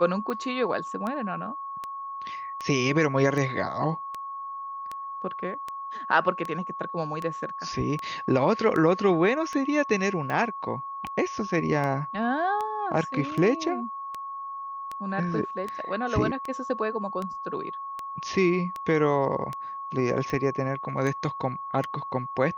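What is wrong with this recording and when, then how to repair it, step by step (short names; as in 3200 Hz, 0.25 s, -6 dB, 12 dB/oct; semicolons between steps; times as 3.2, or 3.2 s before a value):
tick 78 rpm -19 dBFS
tone 1100 Hz -33 dBFS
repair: de-click; notch 1100 Hz, Q 30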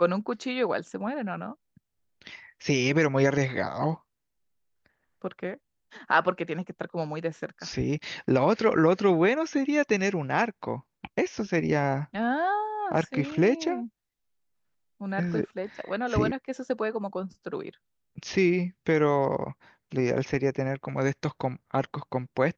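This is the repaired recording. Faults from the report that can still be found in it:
none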